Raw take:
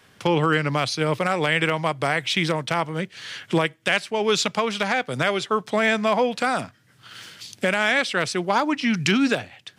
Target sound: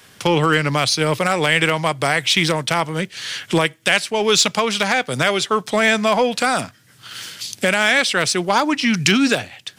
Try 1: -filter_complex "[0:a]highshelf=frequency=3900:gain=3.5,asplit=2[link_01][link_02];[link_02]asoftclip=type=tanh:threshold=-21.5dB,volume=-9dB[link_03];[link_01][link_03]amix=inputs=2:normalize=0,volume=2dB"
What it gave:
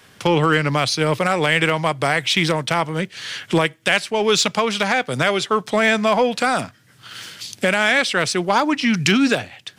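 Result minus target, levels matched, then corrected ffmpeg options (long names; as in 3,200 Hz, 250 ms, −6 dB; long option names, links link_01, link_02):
8,000 Hz band −3.5 dB
-filter_complex "[0:a]highshelf=frequency=3900:gain=9.5,asplit=2[link_01][link_02];[link_02]asoftclip=type=tanh:threshold=-21.5dB,volume=-9dB[link_03];[link_01][link_03]amix=inputs=2:normalize=0,volume=2dB"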